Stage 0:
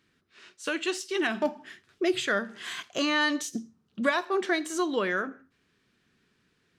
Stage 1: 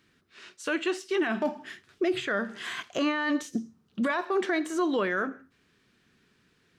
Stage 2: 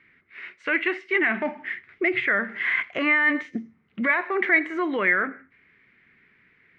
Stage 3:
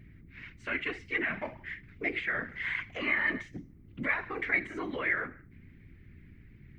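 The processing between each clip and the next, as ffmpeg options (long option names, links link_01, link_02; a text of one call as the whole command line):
ffmpeg -i in.wav -filter_complex "[0:a]acrossover=split=2500[link_01][link_02];[link_02]acompressor=threshold=-46dB:ratio=6[link_03];[link_01][link_03]amix=inputs=2:normalize=0,alimiter=limit=-22.5dB:level=0:latency=1:release=13,volume=3.5dB" out.wav
ffmpeg -i in.wav -af "lowpass=frequency=2100:width_type=q:width=11" out.wav
ffmpeg -i in.wav -af "aeval=exprs='val(0)+0.01*(sin(2*PI*60*n/s)+sin(2*PI*2*60*n/s)/2+sin(2*PI*3*60*n/s)/3+sin(2*PI*4*60*n/s)/4+sin(2*PI*5*60*n/s)/5)':channel_layout=same,afftfilt=real='hypot(re,im)*cos(2*PI*random(0))':imag='hypot(re,im)*sin(2*PI*random(1))':win_size=512:overlap=0.75,aemphasis=mode=production:type=75fm,volume=-4.5dB" out.wav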